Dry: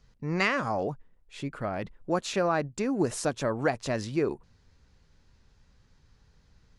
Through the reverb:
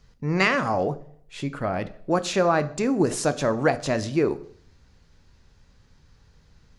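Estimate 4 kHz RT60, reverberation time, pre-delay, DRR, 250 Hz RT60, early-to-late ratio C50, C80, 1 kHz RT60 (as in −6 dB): 0.70 s, 0.60 s, 10 ms, 12.0 dB, 0.60 s, 17.5 dB, 20.5 dB, 0.60 s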